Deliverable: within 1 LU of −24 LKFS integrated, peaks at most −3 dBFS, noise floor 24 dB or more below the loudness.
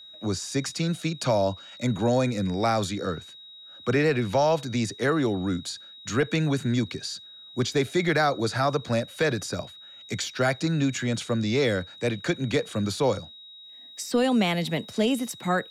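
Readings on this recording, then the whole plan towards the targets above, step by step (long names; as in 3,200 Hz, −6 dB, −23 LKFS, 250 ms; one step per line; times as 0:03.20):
interfering tone 3,800 Hz; level of the tone −44 dBFS; integrated loudness −26.5 LKFS; sample peak −14.0 dBFS; target loudness −24.0 LKFS
→ notch filter 3,800 Hz, Q 30
level +2.5 dB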